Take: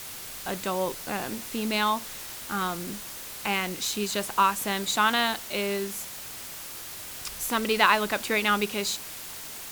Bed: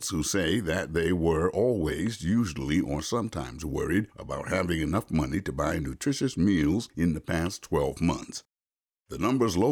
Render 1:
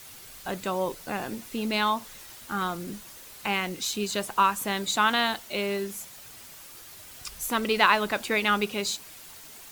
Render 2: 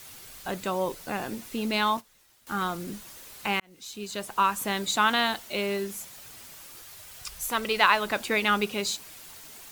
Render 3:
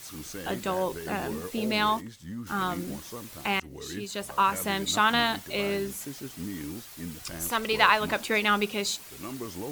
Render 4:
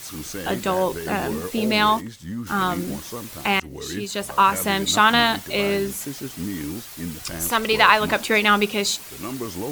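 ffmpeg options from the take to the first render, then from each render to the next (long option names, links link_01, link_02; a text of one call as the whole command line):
ffmpeg -i in.wav -af "afftdn=noise_reduction=8:noise_floor=-40" out.wav
ffmpeg -i in.wav -filter_complex "[0:a]asettb=1/sr,asplit=3[link_01][link_02][link_03];[link_01]atrim=end=1.974[link_04];[link_02]atrim=start=1.97:end=2.47,asetpts=PTS-STARTPTS,afade=type=in:duration=0.004:curve=qsin,afade=type=out:start_time=0.496:duration=0.004:curve=qsin,agate=range=-16dB:threshold=-41dB:ratio=16:release=100:detection=peak[link_05];[link_03]atrim=start=2.466[link_06];[link_04][link_05]acrossfade=duration=0.004:curve1=hsin:curve2=qsin[link_07];[link_07][link_06]acrossfade=duration=0.004:curve1=qsin:curve2=hsin,asettb=1/sr,asplit=3[link_08][link_09][link_10];[link_08]atrim=end=6.824[link_11];[link_09]atrim=start=6.82:end=8.07,asetpts=PTS-STARTPTS,afade=type=in:duration=0.004:curve=qsin,afade=type=out:start_time=1.246:duration=0.004:curve=qsin,equalizer=frequency=270:width=1.5:gain=-8.5[link_12];[link_10]atrim=start=8.066[link_13];[link_11][link_12]acrossfade=duration=0.004:curve1=hsin:curve2=qsin[link_14];[link_14][link_13]acrossfade=duration=0.004:curve1=qsin:curve2=hsin,asplit=2[link_15][link_16];[link_15]atrim=end=3.6,asetpts=PTS-STARTPTS,afade=type=out:start_time=3.596:duration=0.004:curve=hsin[link_17];[link_16]atrim=start=3.6,asetpts=PTS-STARTPTS,afade=type=in:duration=1.01[link_18];[link_17][link_18]concat=n=2:v=0:a=1" out.wav
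ffmpeg -i in.wav -i bed.wav -filter_complex "[1:a]volume=-13dB[link_01];[0:a][link_01]amix=inputs=2:normalize=0" out.wav
ffmpeg -i in.wav -af "volume=7dB,alimiter=limit=-1dB:level=0:latency=1" out.wav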